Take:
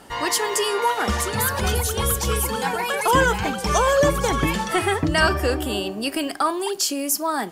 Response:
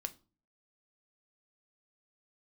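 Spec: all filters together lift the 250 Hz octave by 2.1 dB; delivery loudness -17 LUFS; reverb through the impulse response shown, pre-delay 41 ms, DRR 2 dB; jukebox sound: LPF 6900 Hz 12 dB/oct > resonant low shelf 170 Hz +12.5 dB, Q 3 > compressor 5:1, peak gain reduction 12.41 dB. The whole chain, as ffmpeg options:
-filter_complex "[0:a]equalizer=f=250:t=o:g=4,asplit=2[a][b];[1:a]atrim=start_sample=2205,adelay=41[c];[b][c]afir=irnorm=-1:irlink=0,volume=-0.5dB[d];[a][d]amix=inputs=2:normalize=0,lowpass=6.9k,lowshelf=f=170:t=q:w=3:g=12.5,acompressor=threshold=-16dB:ratio=5,volume=4dB"

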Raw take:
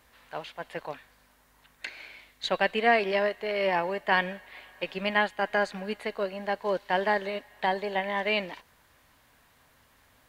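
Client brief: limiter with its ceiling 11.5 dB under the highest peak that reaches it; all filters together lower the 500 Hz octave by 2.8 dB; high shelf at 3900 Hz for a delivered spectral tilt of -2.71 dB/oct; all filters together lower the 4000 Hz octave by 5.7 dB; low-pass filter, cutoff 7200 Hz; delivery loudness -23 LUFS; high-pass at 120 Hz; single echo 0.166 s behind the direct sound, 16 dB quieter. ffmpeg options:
-af "highpass=120,lowpass=7.2k,equalizer=f=500:t=o:g=-3.5,highshelf=f=3.9k:g=-5.5,equalizer=f=4k:t=o:g=-5,alimiter=limit=-22.5dB:level=0:latency=1,aecho=1:1:166:0.158,volume=12dB"

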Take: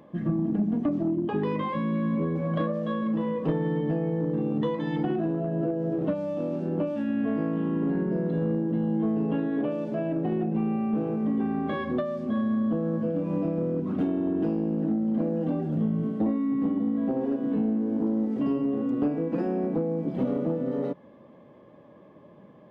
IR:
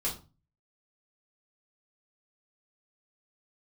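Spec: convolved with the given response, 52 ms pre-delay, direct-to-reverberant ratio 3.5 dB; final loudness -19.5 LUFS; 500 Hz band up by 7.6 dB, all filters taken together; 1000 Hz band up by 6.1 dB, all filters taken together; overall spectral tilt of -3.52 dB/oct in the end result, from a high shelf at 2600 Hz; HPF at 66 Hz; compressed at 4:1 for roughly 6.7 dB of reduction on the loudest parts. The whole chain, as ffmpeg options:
-filter_complex "[0:a]highpass=66,equalizer=f=500:t=o:g=8,equalizer=f=1k:t=o:g=6,highshelf=f=2.6k:g=-8,acompressor=threshold=-26dB:ratio=4,asplit=2[a][b];[1:a]atrim=start_sample=2205,adelay=52[c];[b][c]afir=irnorm=-1:irlink=0,volume=-8dB[d];[a][d]amix=inputs=2:normalize=0,volume=9dB"

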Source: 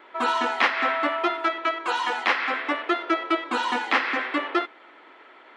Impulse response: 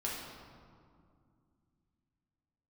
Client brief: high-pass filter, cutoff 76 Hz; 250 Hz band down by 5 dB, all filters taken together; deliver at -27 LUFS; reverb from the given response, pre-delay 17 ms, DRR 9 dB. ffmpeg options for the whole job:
-filter_complex "[0:a]highpass=76,equalizer=f=250:t=o:g=-7.5,asplit=2[a][b];[1:a]atrim=start_sample=2205,adelay=17[c];[b][c]afir=irnorm=-1:irlink=0,volume=-12.5dB[d];[a][d]amix=inputs=2:normalize=0,volume=-2.5dB"

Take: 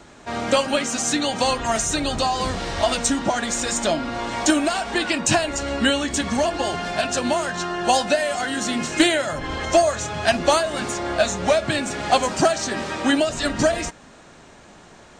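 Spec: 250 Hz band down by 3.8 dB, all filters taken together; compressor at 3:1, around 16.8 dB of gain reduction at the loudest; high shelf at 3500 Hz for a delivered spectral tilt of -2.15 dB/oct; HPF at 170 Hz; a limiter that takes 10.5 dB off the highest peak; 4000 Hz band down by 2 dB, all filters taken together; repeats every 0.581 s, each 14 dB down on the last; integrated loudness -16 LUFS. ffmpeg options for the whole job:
-af "highpass=170,equalizer=f=250:t=o:g=-4,highshelf=f=3.5k:g=5,equalizer=f=4k:t=o:g=-6,acompressor=threshold=-37dB:ratio=3,alimiter=level_in=4.5dB:limit=-24dB:level=0:latency=1,volume=-4.5dB,aecho=1:1:581|1162:0.2|0.0399,volume=21.5dB"

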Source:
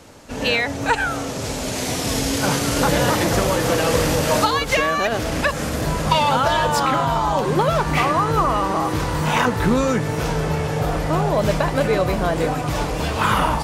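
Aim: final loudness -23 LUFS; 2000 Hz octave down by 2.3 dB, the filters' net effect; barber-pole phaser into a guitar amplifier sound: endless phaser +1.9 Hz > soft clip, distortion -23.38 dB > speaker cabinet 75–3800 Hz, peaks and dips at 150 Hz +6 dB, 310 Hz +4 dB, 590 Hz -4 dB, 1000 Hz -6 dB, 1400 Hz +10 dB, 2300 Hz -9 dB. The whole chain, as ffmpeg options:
-filter_complex "[0:a]equalizer=f=2k:t=o:g=-7.5,asplit=2[a][b];[b]afreqshift=1.9[c];[a][c]amix=inputs=2:normalize=1,asoftclip=threshold=-12dB,highpass=75,equalizer=f=150:t=q:w=4:g=6,equalizer=f=310:t=q:w=4:g=4,equalizer=f=590:t=q:w=4:g=-4,equalizer=f=1k:t=q:w=4:g=-6,equalizer=f=1.4k:t=q:w=4:g=10,equalizer=f=2.3k:t=q:w=4:g=-9,lowpass=f=3.8k:w=0.5412,lowpass=f=3.8k:w=1.3066,volume=1dB"

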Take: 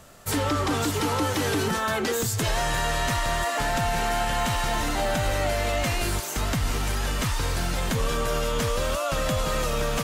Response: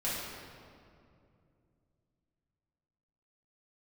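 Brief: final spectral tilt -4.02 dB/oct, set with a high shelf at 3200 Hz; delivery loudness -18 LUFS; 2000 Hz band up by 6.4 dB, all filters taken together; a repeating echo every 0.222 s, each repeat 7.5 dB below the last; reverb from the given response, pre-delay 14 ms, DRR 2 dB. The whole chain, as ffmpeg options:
-filter_complex "[0:a]equalizer=f=2k:t=o:g=6.5,highshelf=f=3.2k:g=4,aecho=1:1:222|444|666|888|1110:0.422|0.177|0.0744|0.0312|0.0131,asplit=2[a][b];[1:a]atrim=start_sample=2205,adelay=14[c];[b][c]afir=irnorm=-1:irlink=0,volume=-8.5dB[d];[a][d]amix=inputs=2:normalize=0,volume=2dB"

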